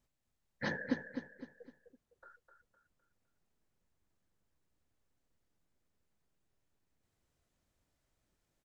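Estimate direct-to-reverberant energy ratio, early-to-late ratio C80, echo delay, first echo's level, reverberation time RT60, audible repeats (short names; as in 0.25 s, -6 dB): none, none, 0.255 s, -7.5 dB, none, 4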